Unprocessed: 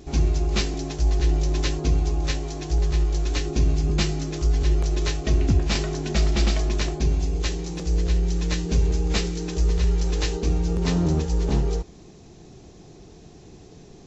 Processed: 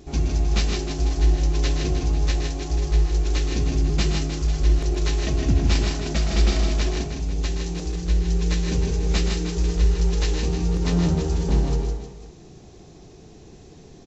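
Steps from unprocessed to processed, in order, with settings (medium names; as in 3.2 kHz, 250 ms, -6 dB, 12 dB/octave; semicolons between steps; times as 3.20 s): 6.87–8.08 s: compression, threshold -22 dBFS, peak gain reduction 6 dB; on a send: multi-tap echo 121/157/310/493 ms -8.5/-4.5/-10.5/-16.5 dB; on the sum: trim -1.5 dB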